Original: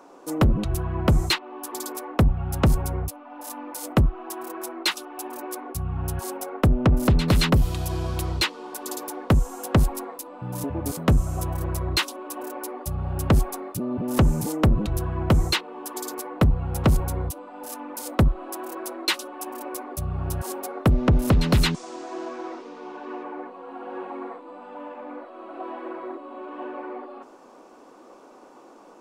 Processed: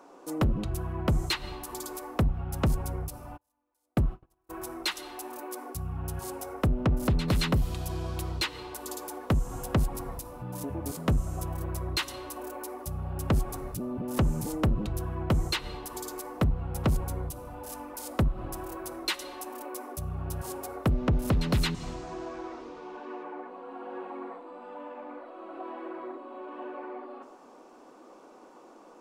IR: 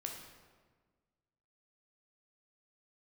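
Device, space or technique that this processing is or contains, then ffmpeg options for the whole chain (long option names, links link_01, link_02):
ducked reverb: -filter_complex "[0:a]asplit=3[link_01][link_02][link_03];[1:a]atrim=start_sample=2205[link_04];[link_02][link_04]afir=irnorm=-1:irlink=0[link_05];[link_03]apad=whole_len=1279338[link_06];[link_05][link_06]sidechaincompress=threshold=-35dB:ratio=5:attack=6:release=111,volume=-2dB[link_07];[link_01][link_07]amix=inputs=2:normalize=0,asplit=3[link_08][link_09][link_10];[link_08]afade=type=out:start_time=3.36:duration=0.02[link_11];[link_09]agate=range=-39dB:threshold=-23dB:ratio=16:detection=peak,afade=type=in:start_time=3.36:duration=0.02,afade=type=out:start_time=4.49:duration=0.02[link_12];[link_10]afade=type=in:start_time=4.49:duration=0.02[link_13];[link_11][link_12][link_13]amix=inputs=3:normalize=0,volume=-7.5dB"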